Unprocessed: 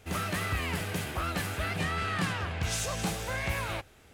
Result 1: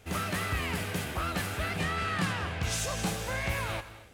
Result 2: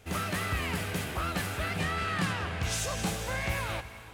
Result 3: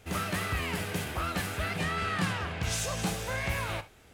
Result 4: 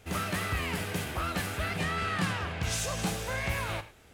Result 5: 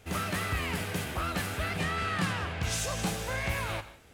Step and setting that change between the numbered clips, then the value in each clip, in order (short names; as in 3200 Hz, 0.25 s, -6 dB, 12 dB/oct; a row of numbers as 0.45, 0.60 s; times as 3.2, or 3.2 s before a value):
non-linear reverb, gate: 300, 530, 90, 130, 200 ms